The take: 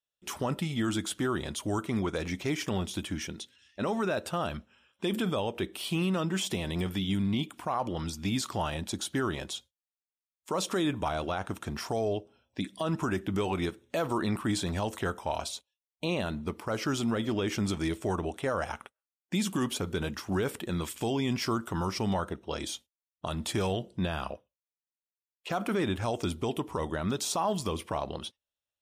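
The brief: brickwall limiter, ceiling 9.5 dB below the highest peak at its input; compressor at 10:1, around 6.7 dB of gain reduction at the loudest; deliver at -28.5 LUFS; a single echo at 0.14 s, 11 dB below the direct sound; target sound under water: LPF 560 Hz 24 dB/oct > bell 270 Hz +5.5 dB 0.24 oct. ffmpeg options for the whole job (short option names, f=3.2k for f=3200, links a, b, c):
-af "acompressor=threshold=-32dB:ratio=10,alimiter=level_in=6dB:limit=-24dB:level=0:latency=1,volume=-6dB,lowpass=f=560:w=0.5412,lowpass=f=560:w=1.3066,equalizer=f=270:t=o:w=0.24:g=5.5,aecho=1:1:140:0.282,volume=12.5dB"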